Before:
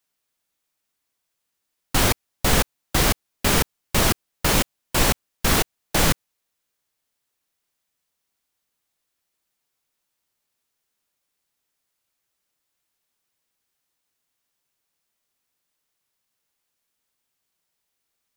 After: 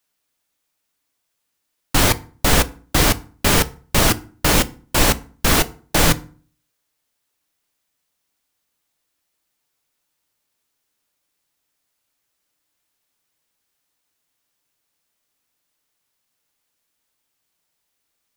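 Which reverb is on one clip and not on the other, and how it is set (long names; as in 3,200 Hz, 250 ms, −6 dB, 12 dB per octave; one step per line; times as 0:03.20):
feedback delay network reverb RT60 0.42 s, low-frequency decay 1.3×, high-frequency decay 0.7×, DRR 12.5 dB
level +3.5 dB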